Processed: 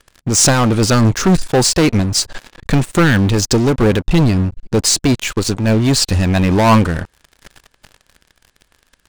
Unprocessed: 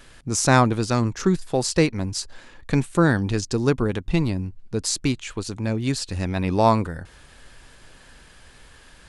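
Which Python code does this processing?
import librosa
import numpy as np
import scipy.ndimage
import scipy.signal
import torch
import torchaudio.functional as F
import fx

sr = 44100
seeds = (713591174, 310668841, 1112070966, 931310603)

y = scipy.signal.sosfilt(scipy.signal.butter(4, 9900.0, 'lowpass', fs=sr, output='sos'), x)
y = fx.leveller(y, sr, passes=5)
y = fx.am_noise(y, sr, seeds[0], hz=5.7, depth_pct=55)
y = y * 10.0 ** (-1.0 / 20.0)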